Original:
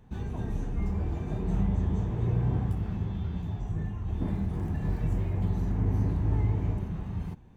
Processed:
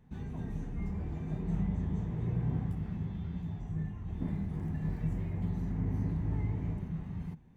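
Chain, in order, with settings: thirty-one-band EQ 160 Hz +9 dB, 250 Hz +5 dB, 2000 Hz +6 dB; gain -8 dB

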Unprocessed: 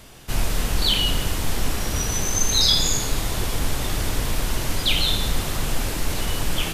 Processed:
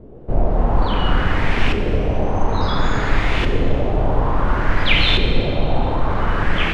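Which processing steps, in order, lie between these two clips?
LFO low-pass saw up 0.58 Hz 390–2700 Hz; Schroeder reverb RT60 2.5 s, combs from 30 ms, DRR 5.5 dB; gain +5.5 dB

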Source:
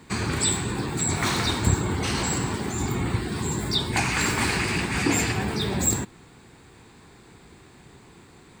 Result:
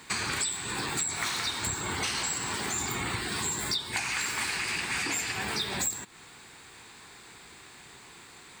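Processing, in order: tilt shelf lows -8.5 dB, about 660 Hz; compressor 16:1, threshold -26 dBFS, peak gain reduction 17 dB; gain -1.5 dB

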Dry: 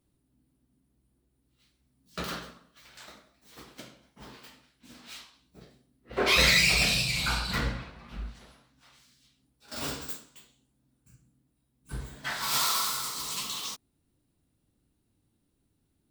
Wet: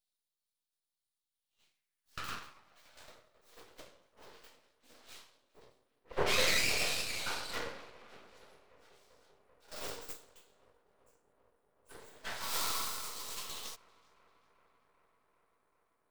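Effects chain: tape echo 0.389 s, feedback 87%, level -22.5 dB, low-pass 2100 Hz; high-pass sweep 3900 Hz -> 470 Hz, 1.26–3.13; half-wave rectifier; gain -4.5 dB

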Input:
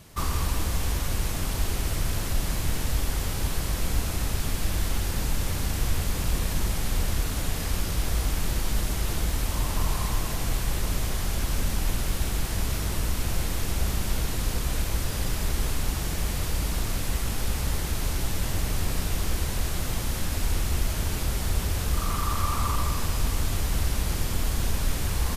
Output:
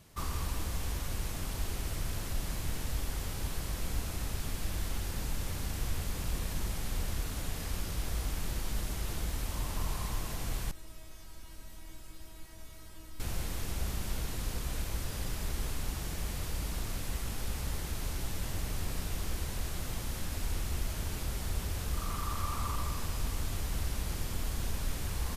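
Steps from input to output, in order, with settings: 10.71–13.2 resonator 320 Hz, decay 0.29 s, harmonics all, mix 90%; gain -8.5 dB

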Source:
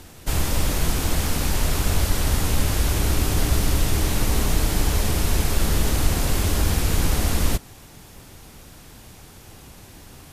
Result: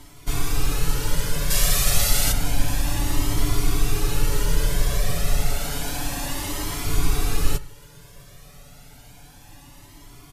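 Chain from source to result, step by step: 1.5–2.32 high shelf 2000 Hz +11 dB; comb 7 ms, depth 73%; 5.56–6.87 low shelf 150 Hz -10.5 dB; reverb RT60 0.35 s, pre-delay 61 ms, DRR 17 dB; cascading flanger rising 0.3 Hz

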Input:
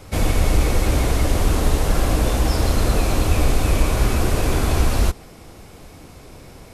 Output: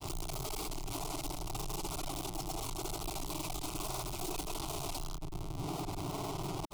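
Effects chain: reverb removal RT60 1.6 s; dynamic EQ 130 Hz, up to -8 dB, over -41 dBFS, Q 1.8; tube stage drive 35 dB, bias 0.7; Schmitt trigger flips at -53 dBFS; grains; fixed phaser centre 340 Hz, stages 8; gain +4 dB

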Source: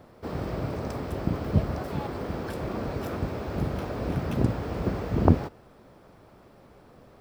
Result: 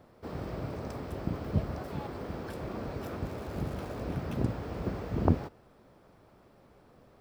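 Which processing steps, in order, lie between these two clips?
3.24–4.02 crackle 390/s -38 dBFS; gain -6 dB

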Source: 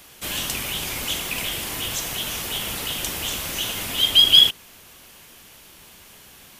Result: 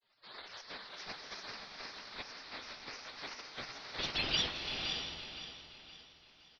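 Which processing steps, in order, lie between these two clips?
spectral gate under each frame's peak -15 dB weak; downsampling 11025 Hz; grains, spray 10 ms, pitch spread up and down by 3 st; on a send: feedback echo 0.518 s, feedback 40%, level -10 dB; on the sum: bloom reverb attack 0.62 s, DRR 5 dB; gain -5.5 dB

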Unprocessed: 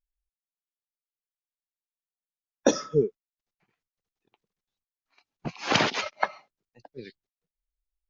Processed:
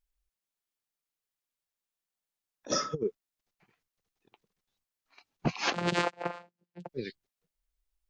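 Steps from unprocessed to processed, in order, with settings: negative-ratio compressor -28 dBFS, ratio -0.5; 5.73–6.89 vocoder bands 8, saw 174 Hz

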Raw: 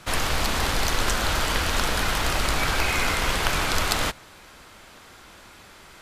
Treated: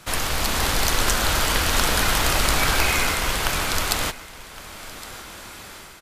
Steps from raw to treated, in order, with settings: high shelf 7600 Hz +8 dB; AGC gain up to 8.5 dB; echo 1.113 s -18 dB; gain -1 dB

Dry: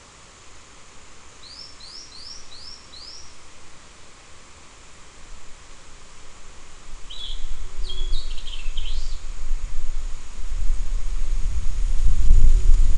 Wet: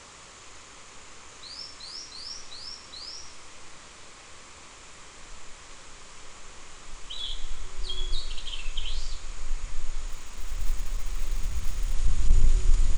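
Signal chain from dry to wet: 10.08–11.94 G.711 law mismatch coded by A; low shelf 250 Hz -6 dB

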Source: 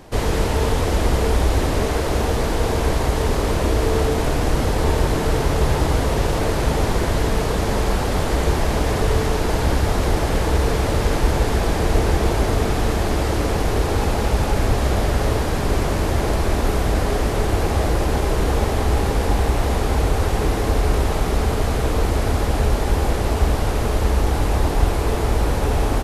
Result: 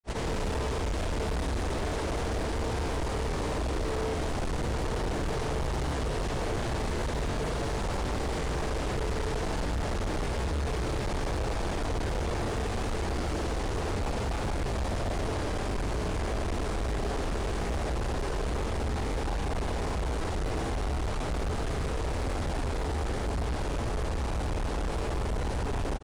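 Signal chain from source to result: grains 87 ms, grains 31/s, spray 0.1 s; downsampling 22050 Hz; overloaded stage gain 22.5 dB; gain -5 dB

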